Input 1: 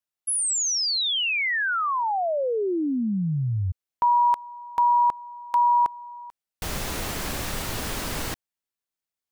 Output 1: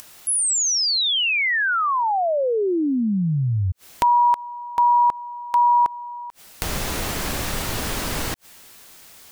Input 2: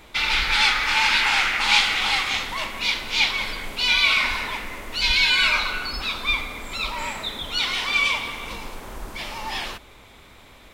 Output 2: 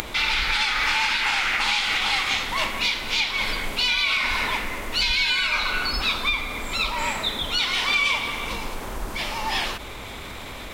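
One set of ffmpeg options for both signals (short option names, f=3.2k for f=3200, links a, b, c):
-af "alimiter=limit=-16.5dB:level=0:latency=1:release=268,acompressor=mode=upward:threshold=-35dB:ratio=4:attack=8.8:release=58:knee=2.83:detection=peak,volume=4dB"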